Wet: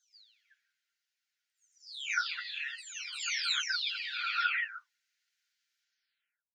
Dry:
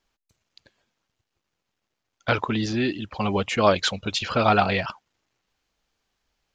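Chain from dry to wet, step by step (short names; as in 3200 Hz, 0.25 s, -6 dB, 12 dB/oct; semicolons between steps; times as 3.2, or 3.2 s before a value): spectral delay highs early, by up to 0.709 s; rippled Chebyshev high-pass 1400 Hz, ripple 3 dB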